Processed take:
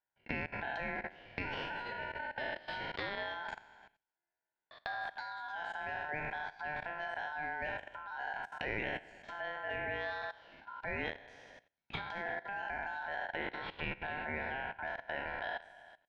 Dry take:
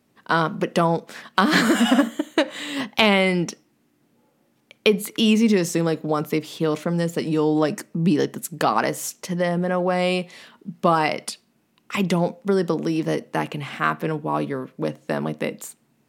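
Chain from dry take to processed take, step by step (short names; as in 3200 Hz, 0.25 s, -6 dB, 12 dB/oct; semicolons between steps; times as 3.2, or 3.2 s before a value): spectral trails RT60 0.76 s; compressor 16:1, threshold -26 dBFS, peak gain reduction 17.5 dB; tape spacing loss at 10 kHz 35 dB; delay with a stepping band-pass 0.115 s, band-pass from 210 Hz, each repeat 1.4 oct, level -8.5 dB; gate -53 dBFS, range -12 dB; level quantiser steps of 18 dB; tone controls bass -15 dB, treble -10 dB; ring modulator 1200 Hz; gain +3 dB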